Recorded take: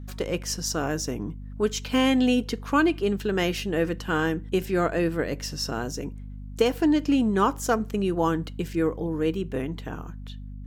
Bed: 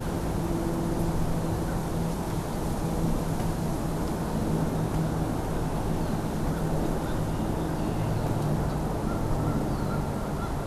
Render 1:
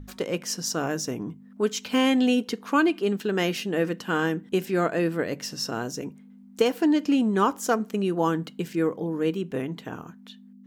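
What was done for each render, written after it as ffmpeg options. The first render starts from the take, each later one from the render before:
-af "bandreject=f=50:t=h:w=6,bandreject=f=100:t=h:w=6,bandreject=f=150:t=h:w=6"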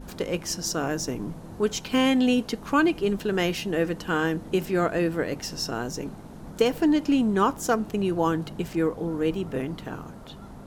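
-filter_complex "[1:a]volume=-14dB[a];[0:a][a]amix=inputs=2:normalize=0"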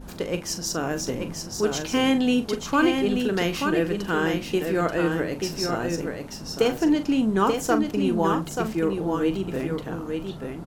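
-filter_complex "[0:a]asplit=2[a][b];[b]adelay=41,volume=-10.5dB[c];[a][c]amix=inputs=2:normalize=0,aecho=1:1:883:0.562"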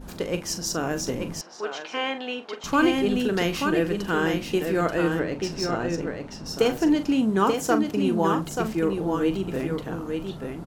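-filter_complex "[0:a]asettb=1/sr,asplit=3[a][b][c];[a]atrim=end=1.414[d];[b]atrim=start=1.41:end=2.64,asetpts=PTS-STARTPTS,afade=t=in:d=0.004:c=qsin,afade=t=out:st=1.226:d=0.004:c=qsin,highpass=630,lowpass=3k[e];[c]atrim=start=2.636[f];[d][e]acrossfade=d=0.004:c1=hsin:c2=qsin[g];[g][f]acrossfade=d=0.004:c1=qsin:c2=hsin,asettb=1/sr,asplit=3[h][i][j];[h]atrim=end=5.194[k];[i]atrim=start=5.19:end=6.46,asetpts=PTS-STARTPTS,afade=t=in:d=0.004:c=qsin,afade=t=out:st=1.266:d=0.004:c=qsin,adynamicsmooth=sensitivity=3:basefreq=5.6k[l];[j]atrim=start=6.456[m];[k][l]acrossfade=d=0.004:c1=hsin:c2=qsin[n];[n][m]acrossfade=d=0.004:c1=qsin:c2=hsin,asettb=1/sr,asplit=3[o][p][q];[o]atrim=end=7.114[r];[p]atrim=start=7.11:end=8.39,asetpts=PTS-STARTPTS,afade=t=in:d=0.004:c=qsin,afade=t=out:st=1.276:d=0.004:c=qsin,highpass=81[s];[q]atrim=start=8.386[t];[r][s]acrossfade=d=0.004:c1=hsin:c2=qsin[u];[u][t]acrossfade=d=0.004:c1=qsin:c2=hsin"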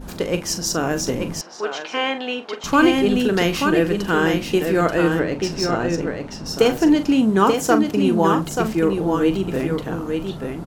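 -af "volume=5.5dB"

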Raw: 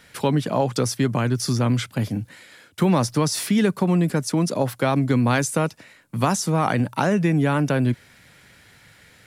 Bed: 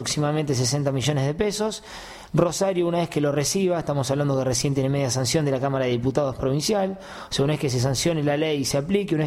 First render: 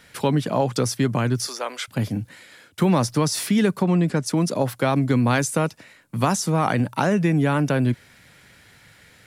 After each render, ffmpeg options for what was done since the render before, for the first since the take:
-filter_complex "[0:a]asettb=1/sr,asplit=3[a][b][c];[a]atrim=end=1.474[d];[b]atrim=start=1.47:end=1.88,asetpts=PTS-STARTPTS,afade=t=in:d=0.004:c=qsin,afade=t=out:st=0.406:d=0.004:c=qsin,highpass=f=480:w=0.5412,highpass=f=480:w=1.3066[e];[c]atrim=start=1.876[f];[d][e]acrossfade=d=0.004:c1=hsin:c2=qsin[g];[g][f]acrossfade=d=0.004:c1=qsin:c2=hsin,asettb=1/sr,asplit=3[h][i][j];[h]atrim=end=3.824[k];[i]atrim=start=3.82:end=4.26,asetpts=PTS-STARTPTS,afade=t=in:d=0.004:c=qsin,afade=t=out:st=0.436:d=0.004:c=qsin,lowpass=7.1k[l];[j]atrim=start=4.256[m];[k][l]acrossfade=d=0.004:c1=hsin:c2=qsin[n];[n][m]acrossfade=d=0.004:c1=qsin:c2=hsin"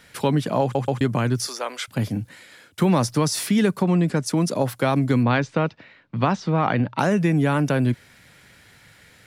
-filter_complex "[0:a]asettb=1/sr,asplit=3[a][b][c];[a]atrim=end=5.234[d];[b]atrim=start=5.23:end=6.99,asetpts=PTS-STARTPTS,afade=t=in:d=0.004:c=qsin,afade=t=out:st=1.756:d=0.004:c=qsin,lowpass=f=4k:w=0.5412,lowpass=f=4k:w=1.3066[e];[c]atrim=start=6.986[f];[d][e]acrossfade=d=0.004:c1=hsin:c2=qsin[g];[g][f]acrossfade=d=0.004:c1=qsin:c2=hsin,asplit=4[h][i][j][k];[h]atrim=end=0.752[l];[i]atrim=start=0.618:end=0.752[m];[j]atrim=start=0.618:end=0.752[n];[k]atrim=start=1.008[o];[l][m]acrossfade=d=0.004:c1=hsin:c2=hsin[p];[p][n]acrossfade=d=0.004:c1=hsin:c2=hsin[q];[q][o]acrossfade=d=0.004:c1=hsin:c2=hsin"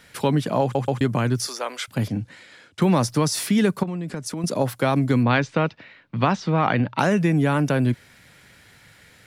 -filter_complex "[0:a]asettb=1/sr,asplit=3[a][b][c];[a]atrim=end=2.084[d];[b]atrim=start=2.08:end=2.82,asetpts=PTS-STARTPTS,afade=t=in:d=0.004:c=qsin,afade=t=out:st=0.736:d=0.004:c=qsin,lowpass=6.8k[e];[c]atrim=start=2.816[f];[d][e]acrossfade=d=0.004:c1=hsin:c2=qsin[g];[g][f]acrossfade=d=0.004:c1=qsin:c2=hsin,asettb=1/sr,asplit=3[h][i][j];[h]atrim=end=3.834[k];[i]atrim=start=3.83:end=4.44,asetpts=PTS-STARTPTS,afade=t=in:d=0.004:c=qsin,afade=t=out:st=0.606:d=0.004:c=qsin,acompressor=threshold=-26dB:ratio=6:attack=3.2:release=140:knee=1:detection=peak[l];[j]atrim=start=4.436[m];[k][l]acrossfade=d=0.004:c1=hsin:c2=qsin[n];[n][m]acrossfade=d=0.004:c1=qsin:c2=hsin,asettb=1/sr,asplit=3[o][p][q];[o]atrim=end=5.294[r];[p]atrim=start=5.29:end=7.22,asetpts=PTS-STARTPTS,afade=t=in:d=0.004:c=qsin,afade=t=out:st=1.926:d=0.004:c=qsin,equalizer=f=2.7k:t=o:w=2:g=3[s];[q]atrim=start=7.216[t];[r][s]acrossfade=d=0.004:c1=hsin:c2=qsin[u];[u][t]acrossfade=d=0.004:c1=qsin:c2=hsin"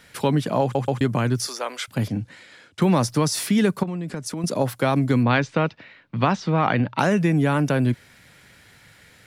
-af anull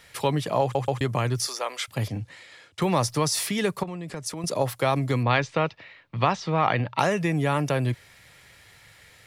-af "equalizer=f=230:w=1.3:g=-10.5,bandreject=f=1.5k:w=8.5"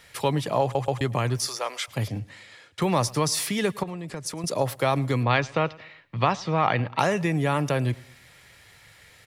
-af "aecho=1:1:110|220|330:0.0708|0.0311|0.0137"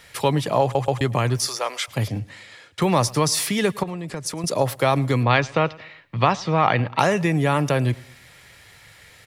-af "volume=4dB"

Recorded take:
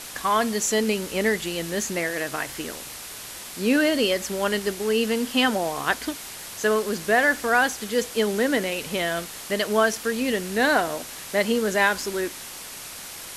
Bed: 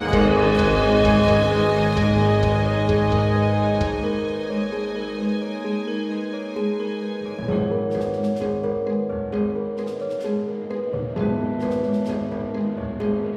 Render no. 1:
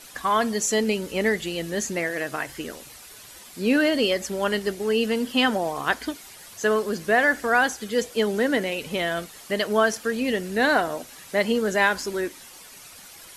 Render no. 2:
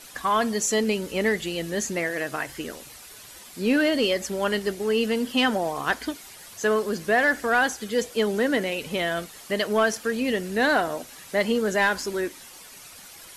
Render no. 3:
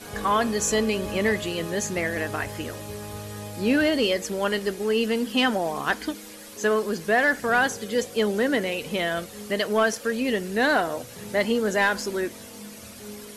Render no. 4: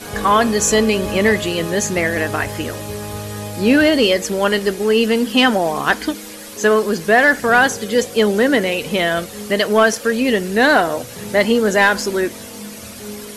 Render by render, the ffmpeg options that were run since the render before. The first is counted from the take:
-af "afftdn=nr=10:nf=-38"
-af "asoftclip=type=tanh:threshold=-11dB"
-filter_complex "[1:a]volume=-18dB[a];[0:a][a]amix=inputs=2:normalize=0"
-af "volume=8.5dB"

